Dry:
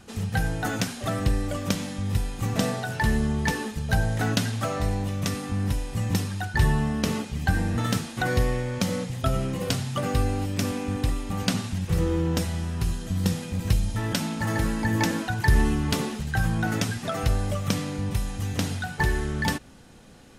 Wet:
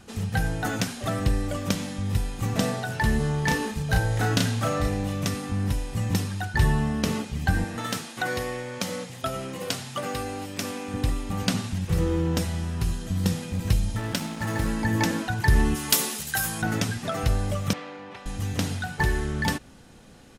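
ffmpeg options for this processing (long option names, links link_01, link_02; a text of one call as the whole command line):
ffmpeg -i in.wav -filter_complex "[0:a]asplit=3[link_01][link_02][link_03];[link_01]afade=type=out:start_time=3.19:duration=0.02[link_04];[link_02]asplit=2[link_05][link_06];[link_06]adelay=34,volume=-3dB[link_07];[link_05][link_07]amix=inputs=2:normalize=0,afade=type=in:start_time=3.19:duration=0.02,afade=type=out:start_time=5.26:duration=0.02[link_08];[link_03]afade=type=in:start_time=5.26:duration=0.02[link_09];[link_04][link_08][link_09]amix=inputs=3:normalize=0,asettb=1/sr,asplit=3[link_10][link_11][link_12];[link_10]atrim=end=7.644[link_13];[link_11]atrim=start=7.64:end=10.94,asetpts=PTS-STARTPTS,afade=type=in:duration=0.004:curve=qsin,afade=type=out:start_time=3.296:duration=0.004:curve=qsin,highpass=frequency=420:poles=1[link_14];[link_12]atrim=start=10.936[link_15];[link_13][link_14]acrossfade=duration=0.004:curve1=hsin:curve2=qsin[link_16];[link_16][link_15]acrossfade=duration=0.004:curve1=qsin:curve2=hsin,asettb=1/sr,asplit=3[link_17][link_18][link_19];[link_17]atrim=end=13.974[link_20];[link_18]atrim=start=13.97:end=14.67,asetpts=PTS-STARTPTS,afade=type=in:duration=0.004:curve=qsin,afade=type=out:start_time=0.696:duration=0.004:curve=qsin,aeval=exprs='sgn(val(0))*max(abs(val(0))-0.0141,0)':channel_layout=same[link_21];[link_19]atrim=start=14.666[link_22];[link_20][link_21]acrossfade=duration=0.004:curve1=hsin:curve2=qsin[link_23];[link_23][link_22]acrossfade=duration=0.004:curve1=qsin:curve2=hsin,asplit=3[link_24][link_25][link_26];[link_24]afade=type=out:start_time=15.74:duration=0.02[link_27];[link_25]aemphasis=mode=production:type=riaa,afade=type=in:start_time=15.74:duration=0.02,afade=type=out:start_time=16.61:duration=0.02[link_28];[link_26]afade=type=in:start_time=16.61:duration=0.02[link_29];[link_27][link_28][link_29]amix=inputs=3:normalize=0,asettb=1/sr,asplit=3[link_30][link_31][link_32];[link_30]atrim=end=17.734[link_33];[link_31]atrim=start=17.73:end=18.26,asetpts=PTS-STARTPTS,afade=type=in:duration=0.004:curve=qsin,afade=type=out:start_time=0.526:duration=0.004:curve=qsin,highpass=510,lowpass=2600[link_34];[link_32]atrim=start=18.256[link_35];[link_33][link_34]acrossfade=duration=0.004:curve1=hsin:curve2=qsin[link_36];[link_36][link_35]acrossfade=duration=0.004:curve1=qsin:curve2=hsin" out.wav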